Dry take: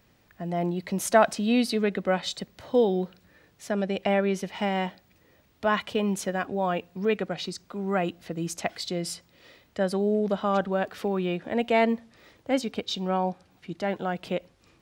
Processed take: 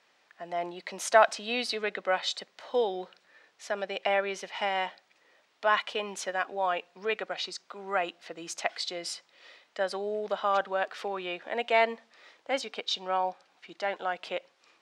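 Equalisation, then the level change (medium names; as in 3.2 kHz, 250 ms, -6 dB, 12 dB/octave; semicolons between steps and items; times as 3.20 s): band-pass 670–6500 Hz; +1.5 dB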